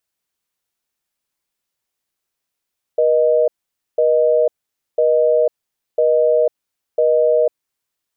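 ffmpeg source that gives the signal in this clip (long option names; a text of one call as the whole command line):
ffmpeg -f lavfi -i "aevalsrc='0.2*(sin(2*PI*480*t)+sin(2*PI*620*t))*clip(min(mod(t,1),0.5-mod(t,1))/0.005,0,1)':duration=4.63:sample_rate=44100" out.wav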